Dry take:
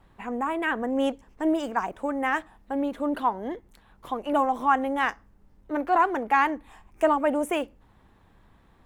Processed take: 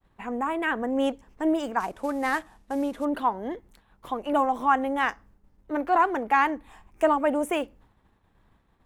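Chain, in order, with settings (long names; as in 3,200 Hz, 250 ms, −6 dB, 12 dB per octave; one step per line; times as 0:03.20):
0:01.80–0:03.05: variable-slope delta modulation 64 kbit/s
downward expander −51 dBFS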